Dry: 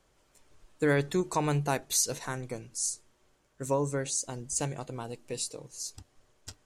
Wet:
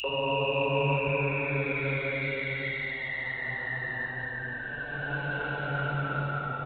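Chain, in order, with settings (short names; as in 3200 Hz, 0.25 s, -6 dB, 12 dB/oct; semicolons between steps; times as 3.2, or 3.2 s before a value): dynamic EQ 180 Hz, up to +6 dB, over -46 dBFS, Q 3.1; painted sound fall, 3.64–5.21, 1000–2900 Hz -36 dBFS; step gate "xx.xxx..xxxxx" 140 bpm -60 dB; Paulstretch 5.7×, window 0.50 s, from 3.65; downsampling 8000 Hz; high shelf 2300 Hz +9.5 dB; three bands offset in time highs, mids, lows 40/90 ms, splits 290/2400 Hz; hum 50 Hz, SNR 28 dB; Opus 24 kbps 48000 Hz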